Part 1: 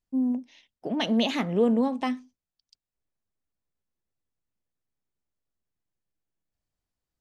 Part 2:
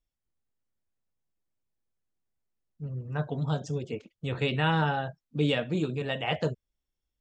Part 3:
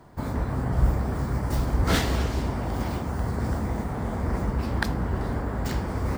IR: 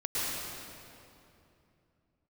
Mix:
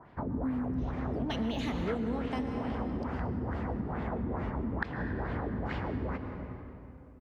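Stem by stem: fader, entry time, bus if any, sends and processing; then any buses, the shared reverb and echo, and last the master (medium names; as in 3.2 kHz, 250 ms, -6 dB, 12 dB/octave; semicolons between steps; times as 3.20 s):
-2.0 dB, 0.30 s, send -12.5 dB, de-esser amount 80%
mute
-5.5 dB, 0.00 s, send -14.5 dB, bass shelf 66 Hz -7 dB; LFO low-pass sine 2.3 Hz 250–3000 Hz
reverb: on, RT60 2.8 s, pre-delay 101 ms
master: compression 6:1, threshold -30 dBFS, peak gain reduction 14 dB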